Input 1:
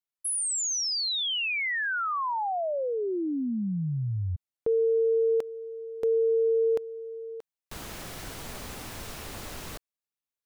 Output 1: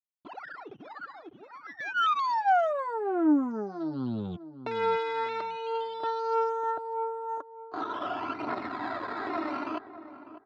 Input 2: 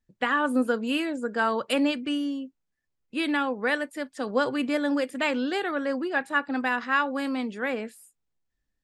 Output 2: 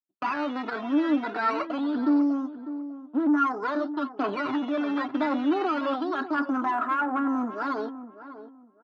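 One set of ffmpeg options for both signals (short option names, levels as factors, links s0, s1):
-filter_complex "[0:a]aeval=exprs='if(lt(val(0),0),0.251*val(0),val(0))':c=same,agate=range=0.0224:threshold=0.00891:ratio=3:release=73:detection=rms,highshelf=f=1700:t=q:w=3:g=-13.5,aecho=1:1:3:0.9,acompressor=threshold=0.0562:ratio=6:attack=0.13:release=20:knee=1:detection=peak,alimiter=level_in=1.58:limit=0.0631:level=0:latency=1:release=16,volume=0.631,acrusher=samples=10:mix=1:aa=0.000001:lfo=1:lforange=10:lforate=0.25,aphaser=in_gain=1:out_gain=1:delay=3.7:decay=0.46:speed=0.47:type=triangular,asoftclip=type=tanh:threshold=0.0355,highpass=f=150:w=0.5412,highpass=f=150:w=1.3066,equalizer=f=300:t=q:w=4:g=7,equalizer=f=790:t=q:w=4:g=6,equalizer=f=1400:t=q:w=4:g=9,equalizer=f=2300:t=q:w=4:g=-4,lowpass=f=3600:w=0.5412,lowpass=f=3600:w=1.3066,asplit=2[s0][s1];[s1]adelay=599,lowpass=f=1100:p=1,volume=0.251,asplit=2[s2][s3];[s3]adelay=599,lowpass=f=1100:p=1,volume=0.25,asplit=2[s4][s5];[s5]adelay=599,lowpass=f=1100:p=1,volume=0.25[s6];[s2][s4][s6]amix=inputs=3:normalize=0[s7];[s0][s7]amix=inputs=2:normalize=0,volume=2.24"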